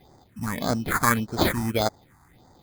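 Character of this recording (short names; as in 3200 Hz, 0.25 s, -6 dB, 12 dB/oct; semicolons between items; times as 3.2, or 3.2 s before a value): aliases and images of a low sample rate 2800 Hz, jitter 0%; phasing stages 4, 1.7 Hz, lowest notch 480–2700 Hz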